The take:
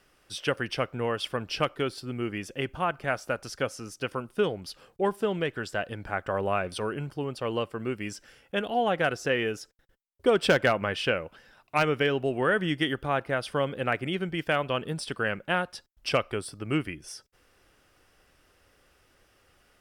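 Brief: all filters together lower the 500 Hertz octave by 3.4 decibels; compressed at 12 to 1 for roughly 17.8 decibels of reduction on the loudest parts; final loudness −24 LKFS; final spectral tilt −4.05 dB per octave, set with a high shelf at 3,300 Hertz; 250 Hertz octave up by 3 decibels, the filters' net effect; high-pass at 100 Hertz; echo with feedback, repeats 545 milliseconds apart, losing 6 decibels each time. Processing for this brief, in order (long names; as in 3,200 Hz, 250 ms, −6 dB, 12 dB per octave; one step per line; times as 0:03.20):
high-pass filter 100 Hz
parametric band 250 Hz +6 dB
parametric band 500 Hz −6 dB
high-shelf EQ 3,300 Hz +3 dB
downward compressor 12 to 1, threshold −37 dBFS
repeating echo 545 ms, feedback 50%, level −6 dB
level +17 dB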